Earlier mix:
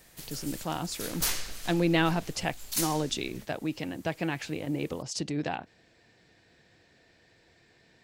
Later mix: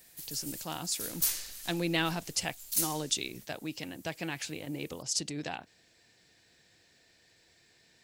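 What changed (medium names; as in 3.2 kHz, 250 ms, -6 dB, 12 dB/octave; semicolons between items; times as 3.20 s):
speech +7.0 dB; master: add pre-emphasis filter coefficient 0.8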